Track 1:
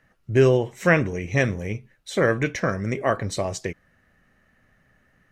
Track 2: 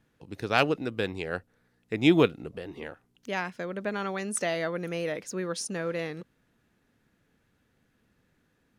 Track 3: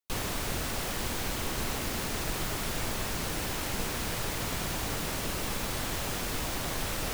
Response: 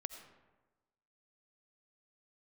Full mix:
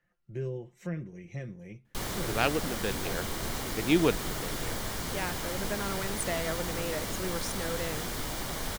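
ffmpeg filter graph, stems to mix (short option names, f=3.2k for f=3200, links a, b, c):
-filter_complex "[0:a]aecho=1:1:5.7:0.69,acrossover=split=350[a][b];[b]acompressor=threshold=-35dB:ratio=2.5[c];[a][c]amix=inputs=2:normalize=0,volume=-16dB[d];[1:a]adelay=1850,volume=-4dB[e];[2:a]bandreject=f=2.6k:w=8.7,flanger=delay=4:depth=8.5:regen=-66:speed=0.44:shape=triangular,adelay=1850,volume=2.5dB[f];[d][e][f]amix=inputs=3:normalize=0"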